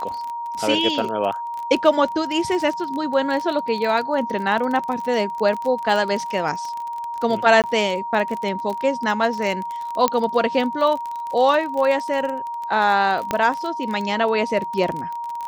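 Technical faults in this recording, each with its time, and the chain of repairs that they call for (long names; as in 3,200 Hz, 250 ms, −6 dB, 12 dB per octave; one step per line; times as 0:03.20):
surface crackle 29 per second −25 dBFS
whistle 940 Hz −26 dBFS
0:07.62–0:07.64: drop-out 18 ms
0:10.08: click −4 dBFS
0:13.31: click −7 dBFS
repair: click removal
notch filter 940 Hz, Q 30
repair the gap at 0:07.62, 18 ms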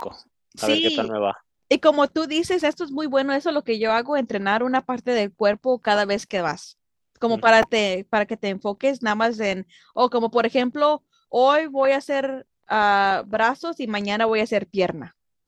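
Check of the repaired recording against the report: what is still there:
none of them is left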